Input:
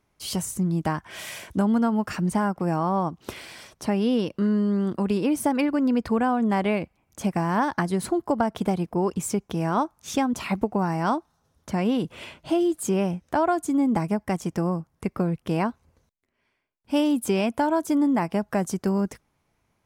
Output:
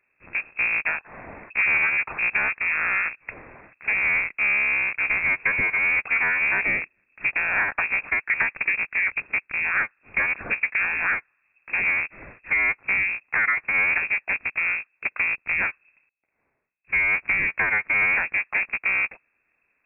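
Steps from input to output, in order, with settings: cycle switcher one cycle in 3, inverted; inverted band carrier 2600 Hz

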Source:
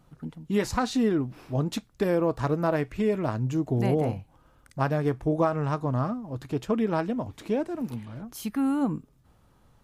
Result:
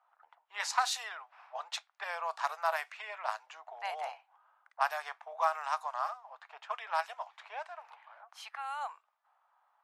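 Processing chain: steep high-pass 730 Hz 48 dB/oct; low-pass opened by the level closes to 1200 Hz, open at -29.5 dBFS; high shelf 5700 Hz +6 dB

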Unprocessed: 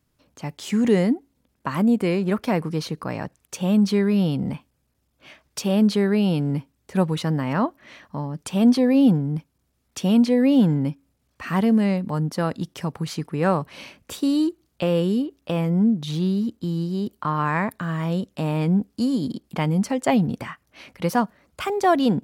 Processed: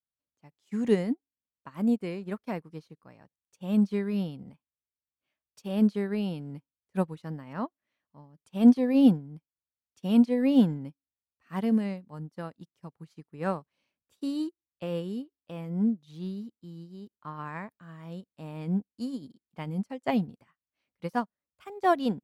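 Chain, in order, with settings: upward expander 2.5:1, over -37 dBFS

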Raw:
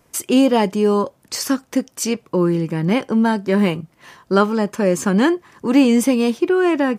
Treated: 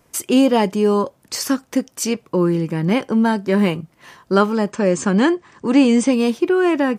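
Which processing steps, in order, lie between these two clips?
4.71–6.13 brick-wall FIR low-pass 9100 Hz

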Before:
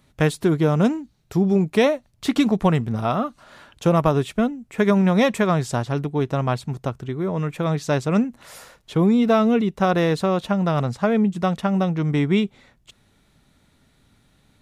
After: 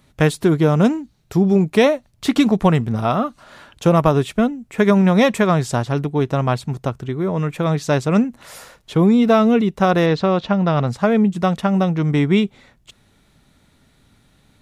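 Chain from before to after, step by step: 10.06–10.87 LPF 5400 Hz 24 dB/oct; gain +3.5 dB

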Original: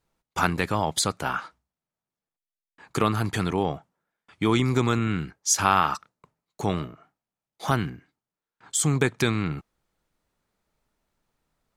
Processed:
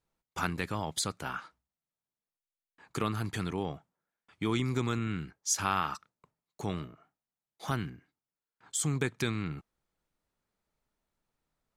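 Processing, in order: dynamic EQ 720 Hz, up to -4 dB, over -37 dBFS, Q 0.93; gain -7.5 dB

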